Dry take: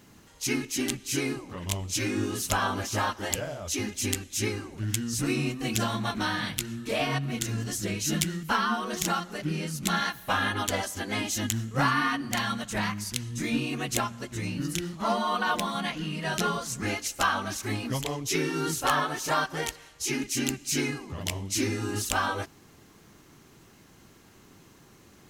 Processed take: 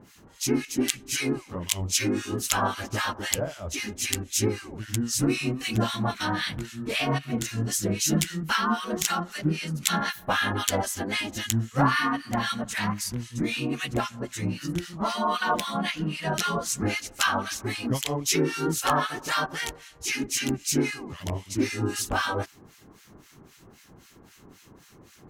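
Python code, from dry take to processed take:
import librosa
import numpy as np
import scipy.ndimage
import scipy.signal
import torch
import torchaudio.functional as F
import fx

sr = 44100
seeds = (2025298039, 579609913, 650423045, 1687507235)

y = fx.harmonic_tremolo(x, sr, hz=3.8, depth_pct=100, crossover_hz=1300.0)
y = y * librosa.db_to_amplitude(6.5)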